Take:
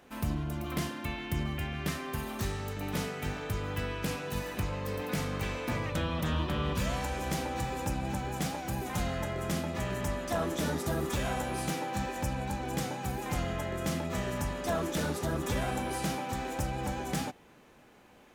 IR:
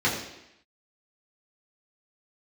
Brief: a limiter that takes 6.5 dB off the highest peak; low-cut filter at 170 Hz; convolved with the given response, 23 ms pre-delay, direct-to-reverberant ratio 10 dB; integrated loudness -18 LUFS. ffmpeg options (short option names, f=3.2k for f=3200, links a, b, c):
-filter_complex "[0:a]highpass=170,alimiter=level_in=2dB:limit=-24dB:level=0:latency=1,volume=-2dB,asplit=2[a][b];[1:a]atrim=start_sample=2205,adelay=23[c];[b][c]afir=irnorm=-1:irlink=0,volume=-24.5dB[d];[a][d]amix=inputs=2:normalize=0,volume=18dB"